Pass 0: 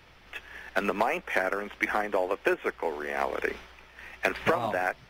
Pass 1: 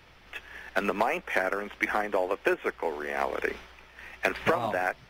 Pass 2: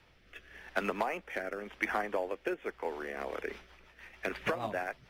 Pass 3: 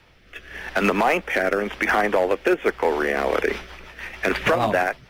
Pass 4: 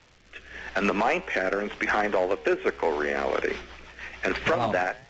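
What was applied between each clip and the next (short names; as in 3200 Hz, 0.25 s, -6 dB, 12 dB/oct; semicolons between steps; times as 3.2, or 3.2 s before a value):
nothing audible
rotary speaker horn 0.9 Hz, later 6.7 Hz, at 2.83; gain -4.5 dB
limiter -25.5 dBFS, peak gain reduction 10 dB; AGC gain up to 9 dB; hard clip -20.5 dBFS, distortion -19 dB; gain +8.5 dB
flange 0.59 Hz, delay 7.7 ms, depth 7.4 ms, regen -90%; crackle 310/s -43 dBFS; downsampling 16000 Hz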